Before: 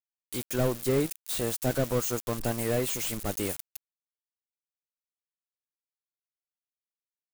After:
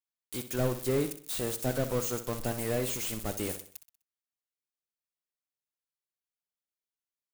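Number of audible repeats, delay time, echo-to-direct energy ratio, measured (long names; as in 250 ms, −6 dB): 4, 63 ms, −10.5 dB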